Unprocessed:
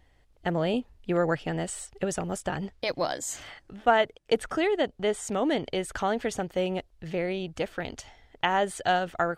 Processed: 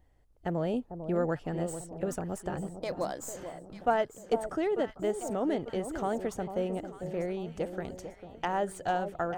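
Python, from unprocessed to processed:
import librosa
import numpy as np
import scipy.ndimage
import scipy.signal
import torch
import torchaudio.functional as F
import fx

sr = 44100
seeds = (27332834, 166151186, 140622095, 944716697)

y = fx.tracing_dist(x, sr, depth_ms=0.025)
y = fx.peak_eq(y, sr, hz=3100.0, db=-10.5, octaves=2.3)
y = fx.echo_alternate(y, sr, ms=447, hz=1000.0, feedback_pct=65, wet_db=-9.0)
y = y * librosa.db_to_amplitude(-3.0)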